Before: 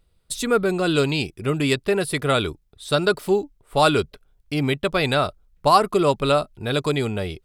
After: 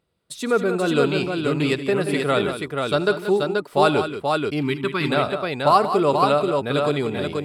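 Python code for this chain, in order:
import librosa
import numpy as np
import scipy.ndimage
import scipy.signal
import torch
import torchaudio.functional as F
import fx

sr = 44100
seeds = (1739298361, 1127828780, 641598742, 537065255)

y = scipy.signal.sosfilt(scipy.signal.butter(2, 150.0, 'highpass', fs=sr, output='sos'), x)
y = fx.high_shelf(y, sr, hz=3700.0, db=-9.0)
y = fx.echo_multitap(y, sr, ms=(77, 151, 181, 482), db=(-17.5, -19.0, -10.0, -4.0))
y = fx.spec_box(y, sr, start_s=4.62, length_s=0.48, low_hz=410.0, high_hz=860.0, gain_db=-16)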